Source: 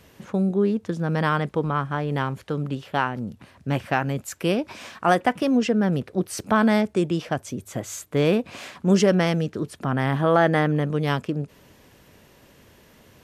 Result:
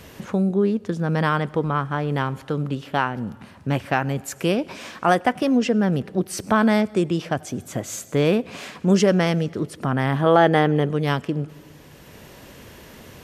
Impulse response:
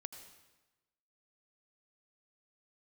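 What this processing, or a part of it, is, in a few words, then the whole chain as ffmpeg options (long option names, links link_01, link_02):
ducked reverb: -filter_complex "[0:a]asettb=1/sr,asplit=3[link_01][link_02][link_03];[link_01]atrim=end=10.264[link_04];[link_02]atrim=start=10.26:end=10.89,asetpts=PTS-STARTPTS,afade=type=in:duration=0.004:curve=qsin,afade=type=out:start_time=0.626:duration=0.004:curve=qsin,equalizer=frequency=400:width_type=o:width=0.33:gain=10,equalizer=frequency=800:width_type=o:width=0.33:gain=5,equalizer=frequency=3150:width_type=o:width=0.33:gain=6[link_05];[link_03]atrim=start=10.886[link_06];[link_04][link_05]acrossfade=duration=0.004:curve1=hsin:curve2=qsin[link_07];[link_07][link_06]acrossfade=duration=0.004:curve1=qsin:curve2=hsin,asplit=3[link_08][link_09][link_10];[1:a]atrim=start_sample=2205[link_11];[link_09][link_11]afir=irnorm=-1:irlink=0[link_12];[link_10]apad=whole_len=583772[link_13];[link_12][link_13]sidechaincompress=threshold=-42dB:ratio=5:attack=24:release=610,volume=10dB[link_14];[link_08][link_14]amix=inputs=2:normalize=0"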